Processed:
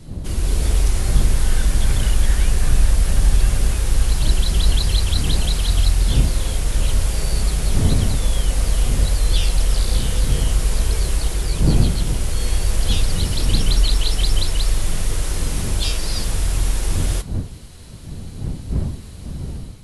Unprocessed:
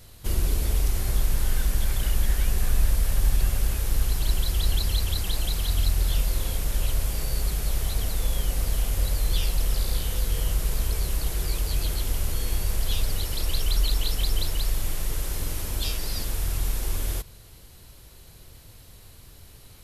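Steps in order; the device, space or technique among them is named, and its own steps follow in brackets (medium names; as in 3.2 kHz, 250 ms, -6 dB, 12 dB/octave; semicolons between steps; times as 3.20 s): smartphone video outdoors (wind noise 120 Hz -32 dBFS; level rider gain up to 6.5 dB; trim +1 dB; AAC 64 kbps 24 kHz)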